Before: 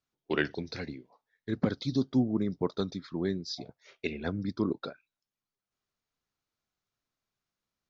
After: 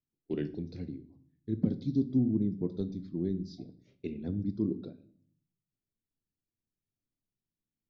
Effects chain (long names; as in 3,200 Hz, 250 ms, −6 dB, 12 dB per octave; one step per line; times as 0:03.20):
drawn EQ curve 290 Hz 0 dB, 1,300 Hz −26 dB, 2,600 Hz −17 dB
on a send: convolution reverb RT60 0.55 s, pre-delay 3 ms, DRR 11 dB